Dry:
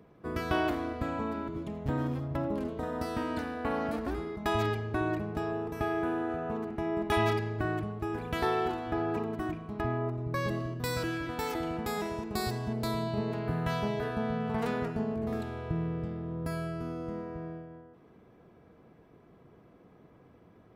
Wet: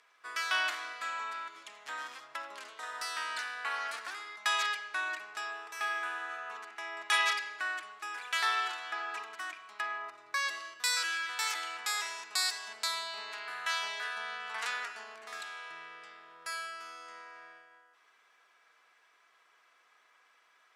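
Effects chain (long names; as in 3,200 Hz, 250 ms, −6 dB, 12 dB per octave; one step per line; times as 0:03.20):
Chebyshev band-pass filter 1,400–7,600 Hz, order 2
spectral tilt +3 dB per octave
level +4 dB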